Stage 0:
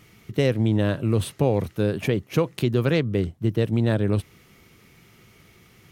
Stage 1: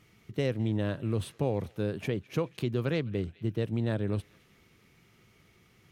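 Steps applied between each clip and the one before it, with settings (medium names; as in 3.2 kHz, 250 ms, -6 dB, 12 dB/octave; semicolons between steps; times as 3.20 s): treble shelf 11 kHz -7 dB; band-passed feedback delay 210 ms, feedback 64%, band-pass 2.9 kHz, level -20 dB; trim -8.5 dB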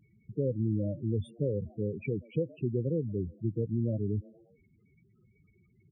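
frequency-shifting echo 120 ms, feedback 54%, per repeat +120 Hz, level -24 dB; loudest bins only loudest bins 8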